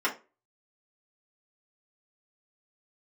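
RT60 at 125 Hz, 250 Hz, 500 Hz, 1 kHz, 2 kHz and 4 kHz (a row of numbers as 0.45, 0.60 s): 0.30, 0.30, 0.35, 0.30, 0.25, 0.20 s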